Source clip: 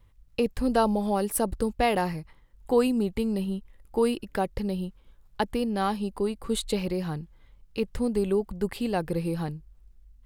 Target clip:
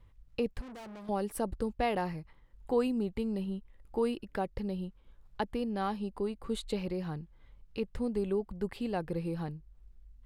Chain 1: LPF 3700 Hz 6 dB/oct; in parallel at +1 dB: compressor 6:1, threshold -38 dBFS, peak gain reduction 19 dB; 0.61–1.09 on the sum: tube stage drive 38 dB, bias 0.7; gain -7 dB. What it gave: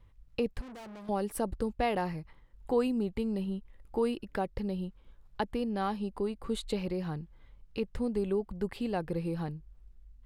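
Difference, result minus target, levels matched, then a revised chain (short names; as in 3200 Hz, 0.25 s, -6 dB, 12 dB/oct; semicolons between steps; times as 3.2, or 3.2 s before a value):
compressor: peak gain reduction -8.5 dB
LPF 3700 Hz 6 dB/oct; in parallel at +1 dB: compressor 6:1, threshold -48.5 dBFS, peak gain reduction 28 dB; 0.61–1.09 on the sum: tube stage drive 38 dB, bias 0.7; gain -7 dB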